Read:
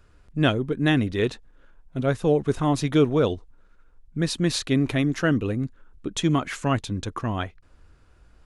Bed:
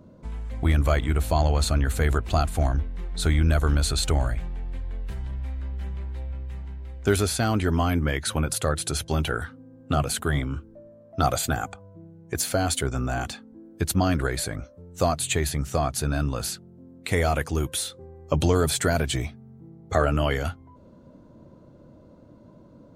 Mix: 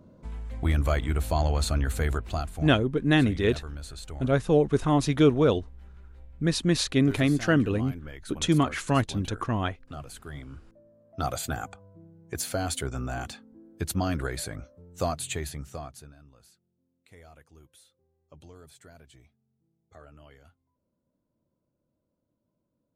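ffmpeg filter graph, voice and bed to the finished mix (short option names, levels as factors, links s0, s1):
-filter_complex "[0:a]adelay=2250,volume=0.944[s0];[1:a]volume=2.51,afade=t=out:st=1.95:d=0.82:silence=0.211349,afade=t=in:st=10.26:d=1.36:silence=0.266073,afade=t=out:st=15.07:d=1.08:silence=0.0668344[s1];[s0][s1]amix=inputs=2:normalize=0"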